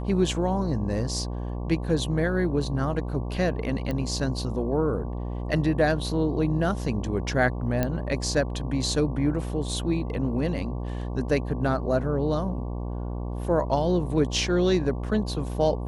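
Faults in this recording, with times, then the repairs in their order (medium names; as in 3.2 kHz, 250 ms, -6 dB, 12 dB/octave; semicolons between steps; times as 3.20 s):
buzz 60 Hz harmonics 19 -31 dBFS
3.91 s: pop -18 dBFS
7.83 s: pop -11 dBFS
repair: de-click; de-hum 60 Hz, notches 19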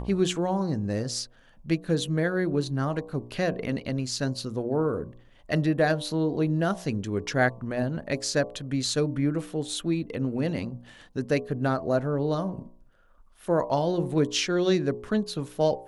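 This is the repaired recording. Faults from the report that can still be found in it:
nothing left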